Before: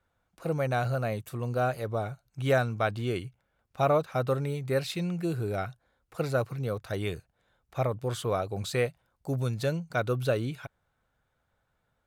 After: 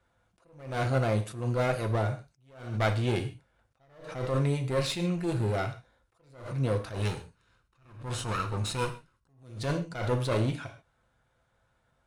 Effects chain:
0:06.95–0:09.43: lower of the sound and its delayed copy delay 0.74 ms
Butterworth low-pass 11,000 Hz 96 dB per octave
asymmetric clip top −33.5 dBFS
reverb whose tail is shaped and stops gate 170 ms falling, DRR 4.5 dB
level that may rise only so fast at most 100 dB per second
level +3.5 dB

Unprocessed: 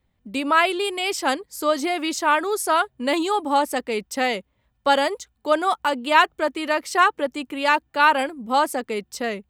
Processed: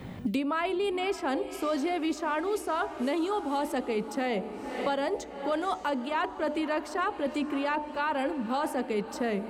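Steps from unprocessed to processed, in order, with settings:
spectral tilt −2.5 dB per octave
hum removal 74.57 Hz, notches 13
reversed playback
downward compressor 10 to 1, threshold −27 dBFS, peak gain reduction 16.5 dB
reversed playback
feedback delay with all-pass diffusion 554 ms, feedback 54%, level −15 dB
on a send at −21.5 dB: convolution reverb RT60 1.3 s, pre-delay 7 ms
on the sum: multiband upward and downward compressor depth 100%

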